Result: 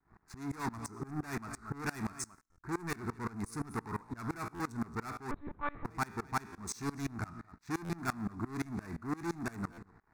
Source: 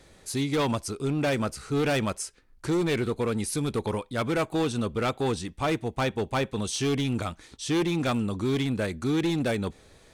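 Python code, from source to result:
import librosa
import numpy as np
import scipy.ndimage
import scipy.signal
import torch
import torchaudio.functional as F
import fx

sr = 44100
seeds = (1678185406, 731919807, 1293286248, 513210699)

y = fx.wiener(x, sr, points=15)
y = y + 10.0 ** (-19.5 / 20.0) * np.pad(y, (int(228 * sr / 1000.0), 0))[:len(y)]
y = fx.env_lowpass(y, sr, base_hz=1900.0, full_db=-23.5)
y = fx.comb_fb(y, sr, f0_hz=57.0, decay_s=0.51, harmonics='all', damping=0.0, mix_pct=50)
y = fx.leveller(y, sr, passes=3)
y = fx.low_shelf(y, sr, hz=190.0, db=-8.5)
y = fx.fixed_phaser(y, sr, hz=1300.0, stages=4)
y = fx.lpc_monotone(y, sr, seeds[0], pitch_hz=290.0, order=10, at=(5.31, 5.85))
y = fx.buffer_glitch(y, sr, at_s=(2.51, 4.54, 6.52, 7.84, 9.72), block=512, repeats=4)
y = fx.tremolo_decay(y, sr, direction='swelling', hz=5.8, depth_db=24)
y = y * 10.0 ** (1.5 / 20.0)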